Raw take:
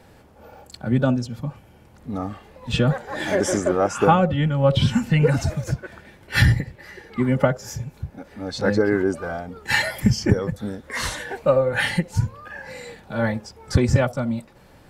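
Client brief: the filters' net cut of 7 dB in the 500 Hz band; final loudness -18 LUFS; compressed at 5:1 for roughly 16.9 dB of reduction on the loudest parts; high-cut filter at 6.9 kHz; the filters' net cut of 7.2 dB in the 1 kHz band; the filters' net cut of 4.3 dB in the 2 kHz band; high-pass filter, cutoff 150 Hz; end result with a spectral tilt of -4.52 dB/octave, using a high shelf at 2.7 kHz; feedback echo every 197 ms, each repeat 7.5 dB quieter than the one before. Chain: high-pass 150 Hz; low-pass 6.9 kHz; peaking EQ 500 Hz -6.5 dB; peaking EQ 1 kHz -7 dB; peaking EQ 2 kHz -4 dB; treble shelf 2.7 kHz +4 dB; compression 5:1, threshold -35 dBFS; feedback delay 197 ms, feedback 42%, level -7.5 dB; trim +20 dB

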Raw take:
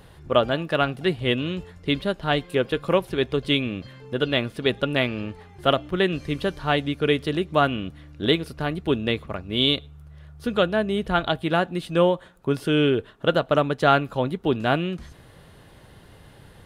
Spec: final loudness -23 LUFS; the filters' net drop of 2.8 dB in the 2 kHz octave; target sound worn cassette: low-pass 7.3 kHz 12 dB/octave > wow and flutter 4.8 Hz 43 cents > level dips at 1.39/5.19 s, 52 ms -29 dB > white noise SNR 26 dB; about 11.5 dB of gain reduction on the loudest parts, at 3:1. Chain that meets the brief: peaking EQ 2 kHz -4 dB; compression 3:1, threshold -30 dBFS; low-pass 7.3 kHz 12 dB/octave; wow and flutter 4.8 Hz 43 cents; level dips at 1.39/5.19 s, 52 ms -29 dB; white noise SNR 26 dB; trim +10 dB

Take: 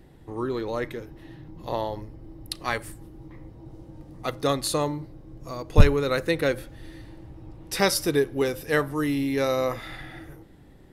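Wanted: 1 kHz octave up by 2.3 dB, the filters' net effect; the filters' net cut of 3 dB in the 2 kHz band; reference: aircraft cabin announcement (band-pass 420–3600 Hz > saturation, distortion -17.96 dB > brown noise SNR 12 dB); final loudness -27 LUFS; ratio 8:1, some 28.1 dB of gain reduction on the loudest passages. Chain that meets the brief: peaking EQ 1 kHz +4.5 dB; peaking EQ 2 kHz -5 dB; compression 8:1, threshold -38 dBFS; band-pass 420–3600 Hz; saturation -33.5 dBFS; brown noise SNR 12 dB; trim +20.5 dB

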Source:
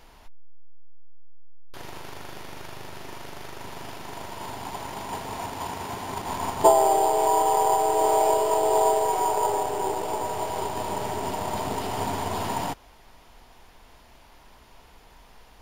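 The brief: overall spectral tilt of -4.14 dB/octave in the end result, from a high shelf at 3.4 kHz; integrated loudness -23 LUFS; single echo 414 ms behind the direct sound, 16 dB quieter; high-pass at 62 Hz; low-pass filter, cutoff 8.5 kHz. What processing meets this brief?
high-pass 62 Hz; low-pass 8.5 kHz; treble shelf 3.4 kHz -7 dB; delay 414 ms -16 dB; trim +2 dB

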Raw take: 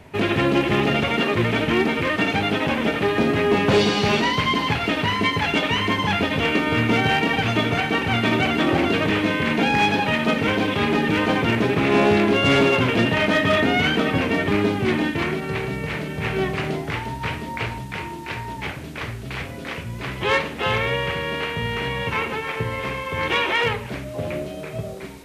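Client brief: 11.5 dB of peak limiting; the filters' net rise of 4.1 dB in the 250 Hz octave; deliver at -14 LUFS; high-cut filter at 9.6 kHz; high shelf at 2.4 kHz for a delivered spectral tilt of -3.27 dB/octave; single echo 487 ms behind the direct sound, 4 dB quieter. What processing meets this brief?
low-pass 9.6 kHz; peaking EQ 250 Hz +5 dB; treble shelf 2.4 kHz +7 dB; peak limiter -17.5 dBFS; delay 487 ms -4 dB; trim +10 dB

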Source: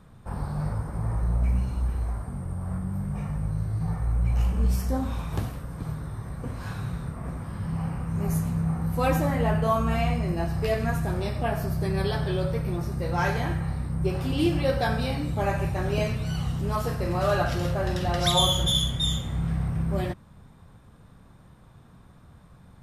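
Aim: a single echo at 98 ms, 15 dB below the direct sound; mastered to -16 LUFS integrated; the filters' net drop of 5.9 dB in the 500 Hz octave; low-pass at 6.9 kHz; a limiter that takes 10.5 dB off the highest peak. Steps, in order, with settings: low-pass 6.9 kHz; peaking EQ 500 Hz -8 dB; peak limiter -20 dBFS; delay 98 ms -15 dB; trim +14 dB

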